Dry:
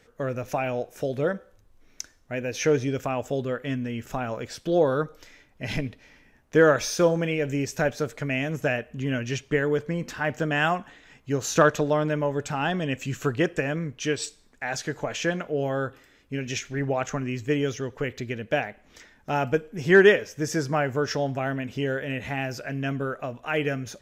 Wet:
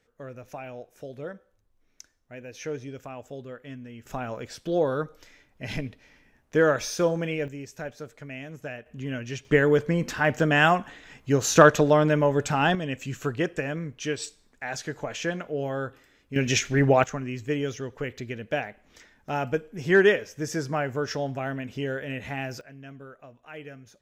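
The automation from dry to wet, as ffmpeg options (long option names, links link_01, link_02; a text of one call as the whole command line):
ffmpeg -i in.wav -af "asetnsamples=nb_out_samples=441:pad=0,asendcmd='4.06 volume volume -3dB;7.48 volume volume -11.5dB;8.86 volume volume -5dB;9.45 volume volume 4dB;12.75 volume volume -3dB;16.36 volume volume 7dB;17.04 volume volume -3dB;22.61 volume volume -15.5dB',volume=-11.5dB" out.wav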